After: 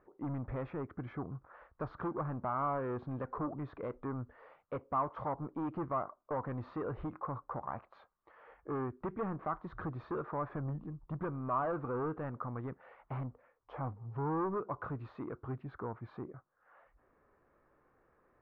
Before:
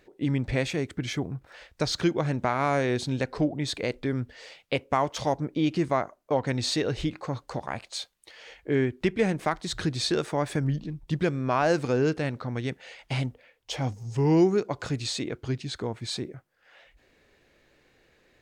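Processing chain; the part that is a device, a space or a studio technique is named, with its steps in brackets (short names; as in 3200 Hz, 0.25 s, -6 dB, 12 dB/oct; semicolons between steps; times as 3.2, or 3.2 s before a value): overdriven synthesiser ladder filter (soft clip -25.5 dBFS, distortion -9 dB; ladder low-pass 1300 Hz, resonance 65%); gain +3 dB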